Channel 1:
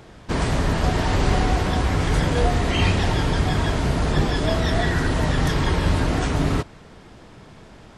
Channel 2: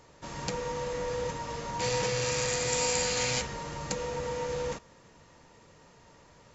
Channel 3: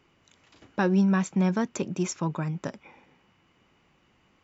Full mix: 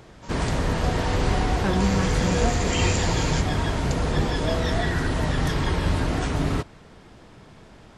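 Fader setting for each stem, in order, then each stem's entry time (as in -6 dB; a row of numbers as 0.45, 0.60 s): -3.0, -2.5, -3.5 dB; 0.00, 0.00, 0.85 s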